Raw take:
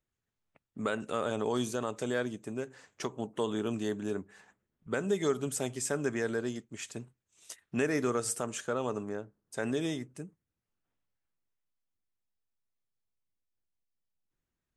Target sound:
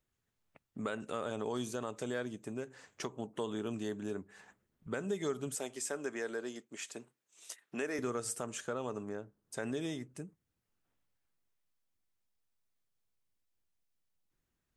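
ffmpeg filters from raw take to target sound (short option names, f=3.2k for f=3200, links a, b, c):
-filter_complex "[0:a]asettb=1/sr,asplit=3[a][b][c];[a]atrim=end=5.554[d];[b]atrim=start=5.55:end=7.99,asetpts=PTS-STARTPTS,afade=t=in:d=0.004:c=qsin,afade=t=out:st=2.436:d=0.004:c=qsin,highpass=310[e];[c]atrim=start=7.986[f];[d][e]acrossfade=d=0.004:c1=hsin:c2=qsin[g];[g][f]acrossfade=d=0.004:c1=qsin:c2=hsin,acompressor=threshold=-52dB:ratio=1.5,volume=3dB"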